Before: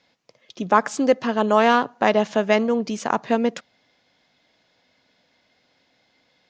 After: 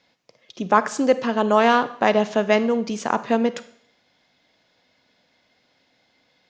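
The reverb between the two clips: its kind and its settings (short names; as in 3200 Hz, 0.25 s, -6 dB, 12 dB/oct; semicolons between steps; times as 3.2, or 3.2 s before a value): Schroeder reverb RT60 0.64 s, combs from 31 ms, DRR 13.5 dB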